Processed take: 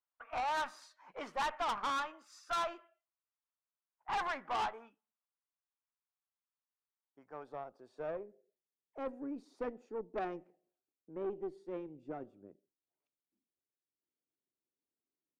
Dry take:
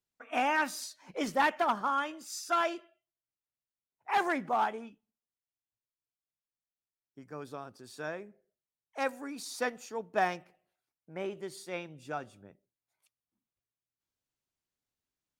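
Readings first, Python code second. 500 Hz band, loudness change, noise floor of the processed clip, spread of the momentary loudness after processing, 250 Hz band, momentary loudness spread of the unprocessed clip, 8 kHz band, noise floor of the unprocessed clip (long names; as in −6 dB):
−5.5 dB, −6.5 dB, below −85 dBFS, 17 LU, −7.0 dB, 17 LU, −12.0 dB, below −85 dBFS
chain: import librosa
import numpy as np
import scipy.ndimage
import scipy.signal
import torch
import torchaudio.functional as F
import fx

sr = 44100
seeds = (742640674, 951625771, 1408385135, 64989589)

y = fx.filter_sweep_bandpass(x, sr, from_hz=1100.0, to_hz=340.0, start_s=6.83, end_s=8.84, q=2.0)
y = fx.tube_stage(y, sr, drive_db=36.0, bias=0.45)
y = F.gain(torch.from_numpy(y), 4.5).numpy()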